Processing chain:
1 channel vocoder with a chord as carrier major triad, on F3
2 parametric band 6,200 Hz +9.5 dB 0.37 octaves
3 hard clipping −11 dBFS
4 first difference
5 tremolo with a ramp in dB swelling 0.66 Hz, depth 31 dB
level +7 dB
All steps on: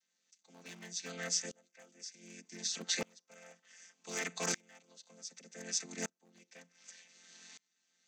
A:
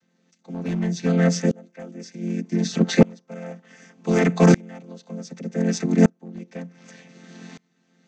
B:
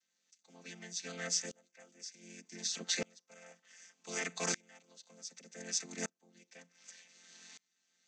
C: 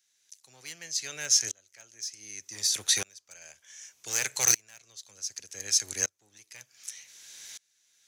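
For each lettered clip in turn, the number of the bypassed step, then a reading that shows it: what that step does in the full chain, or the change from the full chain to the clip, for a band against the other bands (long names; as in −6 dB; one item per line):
4, 8 kHz band −19.0 dB
3, distortion level −21 dB
1, 8 kHz band +10.0 dB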